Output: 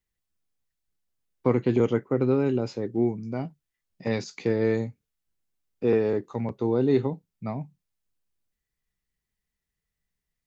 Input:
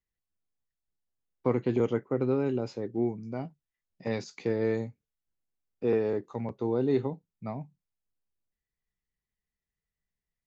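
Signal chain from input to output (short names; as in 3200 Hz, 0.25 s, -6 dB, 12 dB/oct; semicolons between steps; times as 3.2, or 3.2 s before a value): bell 710 Hz -2.5 dB 1.8 oct; gain +5.5 dB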